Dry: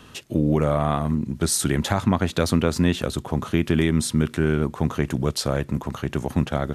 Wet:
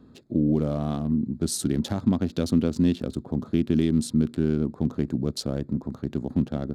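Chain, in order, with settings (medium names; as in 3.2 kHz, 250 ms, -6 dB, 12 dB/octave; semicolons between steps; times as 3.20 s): local Wiener filter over 15 samples; graphic EQ 250/1000/2000/4000 Hz +9/-6/-7/+5 dB; trim -7 dB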